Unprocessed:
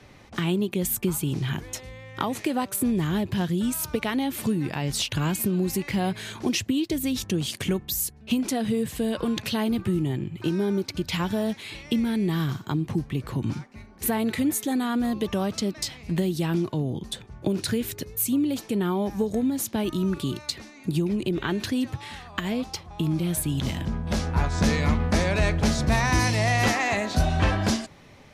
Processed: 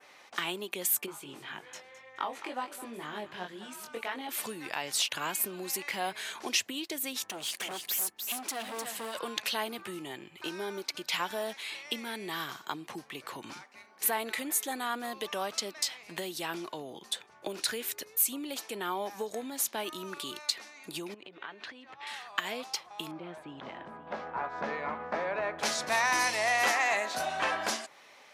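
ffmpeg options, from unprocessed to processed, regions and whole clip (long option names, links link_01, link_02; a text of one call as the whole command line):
ffmpeg -i in.wav -filter_complex "[0:a]asettb=1/sr,asplit=3[link_01][link_02][link_03];[link_01]atrim=end=1.064[link_04];[link_02]atrim=start=1.06:end=4.29,asetpts=PTS-STARTPTS,afade=type=in:duration=0.004:curve=qsin,afade=type=out:start_time=3.226:duration=0.004:curve=qsin,aemphasis=mode=reproduction:type=75kf,flanger=delay=19:depth=3:speed=1.9,aecho=1:1:213|426|639:0.2|0.0599|0.018,atrim=end_sample=142443[link_05];[link_03]atrim=start=4.286[link_06];[link_04][link_05]acrossfade=duration=0.004:curve1=hsin:curve2=qsin[link_07];[link_07][link_06]acrossfade=duration=0.004:curve1=qsin:curve2=hsin,asettb=1/sr,asplit=3[link_08][link_09][link_10];[link_08]atrim=end=7.294[link_11];[link_09]atrim=start=7.29:end=9.19,asetpts=PTS-STARTPTS,afade=type=in:duration=0.004:curve=qsin,afade=type=out:start_time=1.896:duration=0.004:curve=qsin,volume=27dB,asoftclip=hard,volume=-27dB,aecho=1:1:303:0.473,atrim=end_sample=83790[link_12];[link_10]atrim=start=9.186[link_13];[link_11][link_12]acrossfade=duration=0.004:curve1=hsin:curve2=qsin[link_14];[link_14][link_13]acrossfade=duration=0.004:curve1=qsin:curve2=hsin,asettb=1/sr,asplit=3[link_15][link_16][link_17];[link_15]atrim=end=21.144[link_18];[link_16]atrim=start=21.14:end=22.07,asetpts=PTS-STARTPTS,afade=type=in:duration=0.004:curve=qsin,afade=type=out:start_time=0.926:duration=0.004:curve=qsin,lowpass=2800,bandreject=frequency=350:width=9.8,acompressor=threshold=-34dB:ratio=10:attack=3.2:release=140:knee=1:detection=peak[link_19];[link_17]atrim=start=22.066[link_20];[link_18][link_19]acrossfade=duration=0.004:curve1=hsin:curve2=qsin[link_21];[link_21][link_20]acrossfade=duration=0.004:curve1=qsin:curve2=hsin,asettb=1/sr,asplit=3[link_22][link_23][link_24];[link_22]atrim=end=23.114[link_25];[link_23]atrim=start=23.11:end=25.59,asetpts=PTS-STARTPTS,afade=type=in:duration=0.004:curve=qsin,afade=type=out:start_time=2.476:duration=0.004:curve=qsin,lowpass=1300,aecho=1:1:525:0.168,atrim=end_sample=109368[link_26];[link_24]atrim=start=25.586[link_27];[link_25][link_26]acrossfade=duration=0.004:curve1=hsin:curve2=qsin[link_28];[link_28][link_27]acrossfade=duration=0.004:curve1=qsin:curve2=hsin,highpass=710,adynamicequalizer=threshold=0.00708:dfrequency=4300:dqfactor=0.82:tfrequency=4300:tqfactor=0.82:attack=5:release=100:ratio=0.375:range=2.5:mode=cutabove:tftype=bell" out.wav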